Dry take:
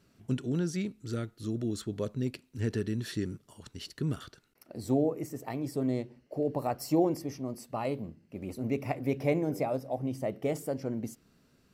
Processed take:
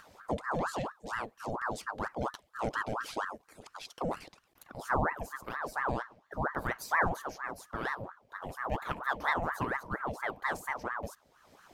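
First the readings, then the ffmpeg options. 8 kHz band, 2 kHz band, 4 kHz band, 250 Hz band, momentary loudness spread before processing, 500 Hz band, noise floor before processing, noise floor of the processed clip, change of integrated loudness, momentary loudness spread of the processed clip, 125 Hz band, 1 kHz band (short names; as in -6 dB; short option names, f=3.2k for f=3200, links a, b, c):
-2.5 dB, +13.0 dB, -1.5 dB, -10.5 dB, 12 LU, -5.5 dB, -68 dBFS, -69 dBFS, -2.0 dB, 12 LU, -8.0 dB, +7.5 dB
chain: -af "acompressor=mode=upward:threshold=-44dB:ratio=2.5,aeval=exprs='val(0)*sin(2*PI*910*n/s+910*0.65/4.3*sin(2*PI*4.3*n/s))':c=same"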